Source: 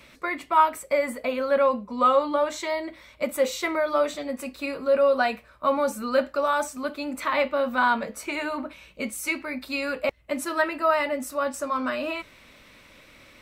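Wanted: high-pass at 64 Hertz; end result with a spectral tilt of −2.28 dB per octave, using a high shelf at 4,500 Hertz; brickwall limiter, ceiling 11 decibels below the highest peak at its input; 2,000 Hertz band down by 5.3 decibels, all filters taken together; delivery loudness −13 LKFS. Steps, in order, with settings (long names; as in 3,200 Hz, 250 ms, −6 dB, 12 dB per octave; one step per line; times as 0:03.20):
high-pass filter 64 Hz
parametric band 2,000 Hz −6 dB
high-shelf EQ 4,500 Hz −7 dB
level +18 dB
brickwall limiter −2.5 dBFS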